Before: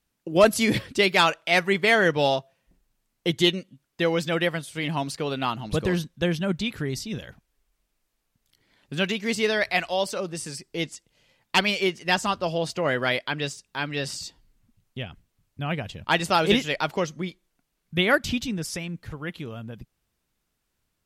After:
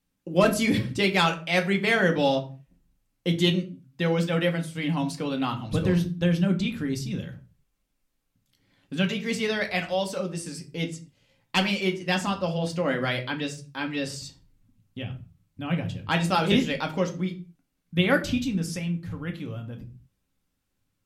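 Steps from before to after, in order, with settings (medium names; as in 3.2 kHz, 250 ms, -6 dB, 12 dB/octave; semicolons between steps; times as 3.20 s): peaking EQ 150 Hz +6.5 dB 1.5 oct; on a send: reverberation RT60 0.40 s, pre-delay 3 ms, DRR 3 dB; on the sum: trim -5 dB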